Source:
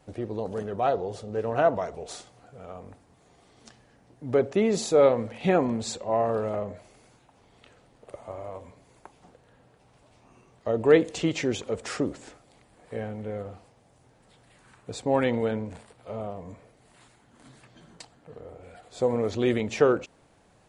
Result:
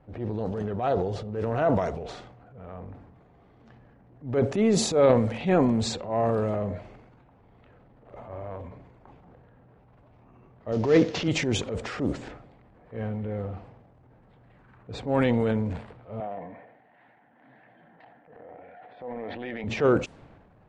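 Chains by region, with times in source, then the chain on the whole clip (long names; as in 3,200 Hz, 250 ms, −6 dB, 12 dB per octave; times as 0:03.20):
0:10.72–0:11.28: variable-slope delta modulation 32 kbit/s + high-pass filter 88 Hz
0:16.20–0:19.64: loudspeaker in its box 310–3,500 Hz, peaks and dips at 390 Hz −9 dB, 750 Hz +7 dB, 1,200 Hz −9 dB, 1,800 Hz +9 dB + downward compressor, threshold −31 dBFS
whole clip: low-pass that shuts in the quiet parts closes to 1,700 Hz, open at −21.5 dBFS; bass and treble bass +6 dB, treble −2 dB; transient designer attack −8 dB, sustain +7 dB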